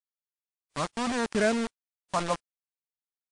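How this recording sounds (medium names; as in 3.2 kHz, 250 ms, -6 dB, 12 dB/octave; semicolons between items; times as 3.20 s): phasing stages 4, 0.76 Hz, lowest notch 400–1200 Hz; a quantiser's noise floor 6-bit, dither none; WMA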